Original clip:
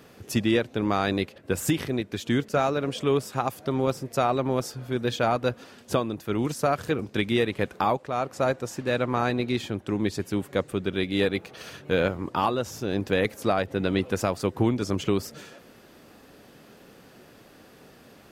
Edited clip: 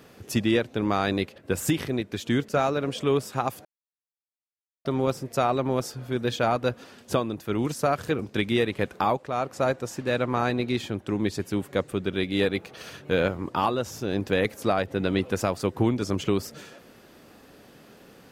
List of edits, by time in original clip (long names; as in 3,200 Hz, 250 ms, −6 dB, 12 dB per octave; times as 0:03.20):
0:03.65: splice in silence 1.20 s